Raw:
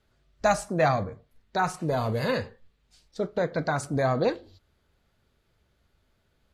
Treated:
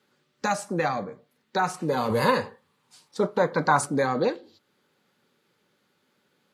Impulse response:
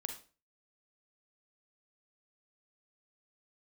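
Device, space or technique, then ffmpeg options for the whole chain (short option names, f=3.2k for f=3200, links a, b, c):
PA system with an anti-feedback notch: -filter_complex "[0:a]highpass=f=170:w=0.5412,highpass=f=170:w=1.3066,asuperstop=centerf=660:order=12:qfactor=7,alimiter=limit=-18.5dB:level=0:latency=1:release=474,asettb=1/sr,asplit=3[a][b][c];[a]atrim=end=2.104[d];[b]atrim=start=2.1:end=3.86,asetpts=PTS-STARTPTS,afade=t=in:d=0.004:c=qsin,afade=t=out:st=1.756:d=0.004:c=qsin,equalizer=f=100:t=o:w=0.67:g=11,equalizer=f=1k:t=o:w=0.67:g=11,equalizer=f=10k:t=o:w=0.67:g=8[e];[c]atrim=start=3.856[f];[d][e]acrossfade=d=0.004:c1=hsin:c2=qsin[g];[g][f]acrossfade=d=0.004:c1=qsin:c2=hsin,volume=4.5dB"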